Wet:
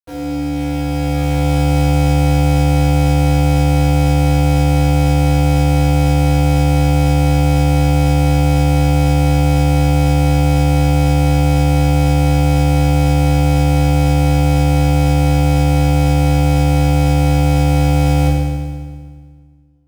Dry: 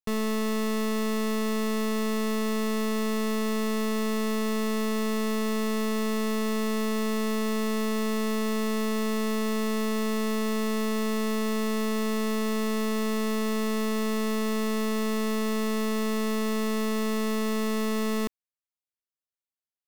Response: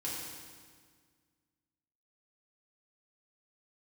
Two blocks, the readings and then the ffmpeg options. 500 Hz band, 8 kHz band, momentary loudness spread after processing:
+8.0 dB, +8.0 dB, 2 LU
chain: -filter_complex "[0:a]highshelf=f=6.6k:g=-7,acrossover=split=100[a][b];[b]dynaudnorm=f=120:g=17:m=10dB[c];[a][c]amix=inputs=2:normalize=0,aeval=exprs='val(0)*sin(2*PI*290*n/s)':c=same,adynamicequalizer=threshold=0.0158:dfrequency=1500:dqfactor=0.74:tfrequency=1500:tqfactor=0.74:attack=5:release=100:ratio=0.375:range=2.5:mode=cutabove:tftype=bell,acrusher=bits=3:mode=log:mix=0:aa=0.000001[d];[1:a]atrim=start_sample=2205[e];[d][e]afir=irnorm=-1:irlink=0"

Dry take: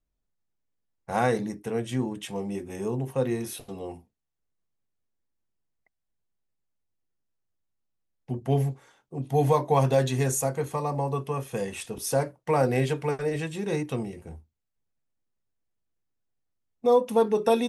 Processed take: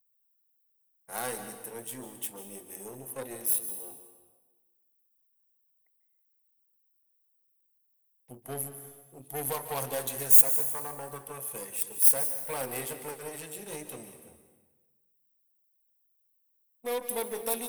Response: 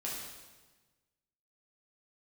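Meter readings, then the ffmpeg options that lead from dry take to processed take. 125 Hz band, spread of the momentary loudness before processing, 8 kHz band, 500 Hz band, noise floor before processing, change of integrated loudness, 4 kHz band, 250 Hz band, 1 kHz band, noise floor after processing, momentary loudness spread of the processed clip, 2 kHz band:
-20.0 dB, 14 LU, +7.0 dB, -12.5 dB, -81 dBFS, +0.5 dB, -4.5 dB, -16.0 dB, -11.0 dB, -72 dBFS, 21 LU, -6.5 dB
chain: -filter_complex "[0:a]aeval=exprs='0.316*(cos(1*acos(clip(val(0)/0.316,-1,1)))-cos(1*PI/2))+0.0355*(cos(8*acos(clip(val(0)/0.316,-1,1)))-cos(8*PI/2))':c=same,aemphasis=mode=production:type=bsi,aexciter=amount=3.9:drive=6.7:freq=8.9k,asplit=2[a][b];[1:a]atrim=start_sample=2205,adelay=143[c];[b][c]afir=irnorm=-1:irlink=0,volume=-11dB[d];[a][d]amix=inputs=2:normalize=0,volume=-12dB"

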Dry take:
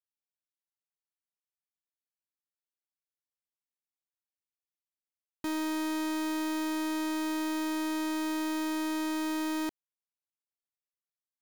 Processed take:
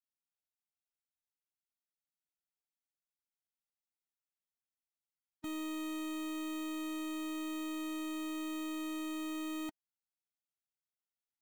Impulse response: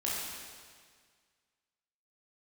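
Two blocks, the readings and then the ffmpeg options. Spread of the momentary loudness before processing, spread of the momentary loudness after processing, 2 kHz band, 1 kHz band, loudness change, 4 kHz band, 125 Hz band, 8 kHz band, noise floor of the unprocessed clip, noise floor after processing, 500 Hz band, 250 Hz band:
2 LU, 2 LU, -9.0 dB, -11.0 dB, -7.5 dB, -7.0 dB, n/a, -7.5 dB, under -85 dBFS, under -85 dBFS, -8.5 dB, -7.5 dB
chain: -af "afftfilt=real='re*eq(mod(floor(b*sr/1024/310),2),0)':imag='im*eq(mod(floor(b*sr/1024/310),2),0)':win_size=1024:overlap=0.75,volume=-4.5dB"

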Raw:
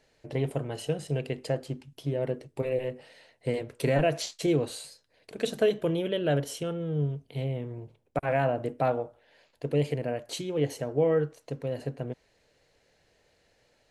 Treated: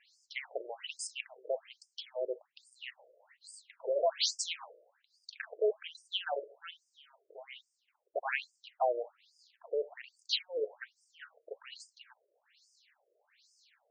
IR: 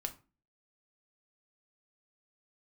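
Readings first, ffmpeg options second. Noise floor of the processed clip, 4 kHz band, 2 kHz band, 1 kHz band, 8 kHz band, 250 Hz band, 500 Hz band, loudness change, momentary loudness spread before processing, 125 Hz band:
-81 dBFS, +2.5 dB, -3.5 dB, -5.5 dB, -1.0 dB, under -25 dB, -8.5 dB, -6.5 dB, 12 LU, under -40 dB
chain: -af "tiltshelf=f=880:g=-9,bandreject=f=107.7:t=h:w=4,bandreject=f=215.4:t=h:w=4,afftfilt=real='re*between(b*sr/1024,450*pow(6800/450,0.5+0.5*sin(2*PI*1.2*pts/sr))/1.41,450*pow(6800/450,0.5+0.5*sin(2*PI*1.2*pts/sr))*1.41)':imag='im*between(b*sr/1024,450*pow(6800/450,0.5+0.5*sin(2*PI*1.2*pts/sr))/1.41,450*pow(6800/450,0.5+0.5*sin(2*PI*1.2*pts/sr))*1.41)':win_size=1024:overlap=0.75"

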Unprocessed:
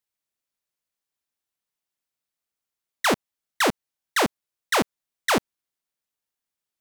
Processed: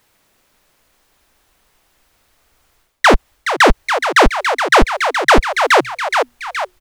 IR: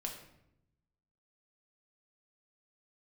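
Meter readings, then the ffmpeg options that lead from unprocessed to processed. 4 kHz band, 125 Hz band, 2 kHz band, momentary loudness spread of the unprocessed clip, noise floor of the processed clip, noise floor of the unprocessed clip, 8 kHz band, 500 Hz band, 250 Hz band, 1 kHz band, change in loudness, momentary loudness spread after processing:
+10.0 dB, +13.5 dB, +14.0 dB, 6 LU, -61 dBFS, under -85 dBFS, +6.0 dB, +13.5 dB, +9.5 dB, +15.0 dB, +11.0 dB, 7 LU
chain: -filter_complex "[0:a]highshelf=f=2.9k:g=-11,acrossover=split=9700[a][b];[b]acompressor=threshold=-50dB:ratio=4:attack=1:release=60[c];[a][c]amix=inputs=2:normalize=0,asplit=2[d][e];[e]asplit=4[f][g][h][i];[f]adelay=421,afreqshift=120,volume=-21dB[j];[g]adelay=842,afreqshift=240,volume=-27.2dB[k];[h]adelay=1263,afreqshift=360,volume=-33.4dB[l];[i]adelay=1684,afreqshift=480,volume=-39.6dB[m];[j][k][l][m]amix=inputs=4:normalize=0[n];[d][n]amix=inputs=2:normalize=0,asubboost=boost=10.5:cutoff=58,areverse,acompressor=threshold=-36dB:ratio=8,areverse,alimiter=level_in=36dB:limit=-1dB:release=50:level=0:latency=1,volume=-1dB"

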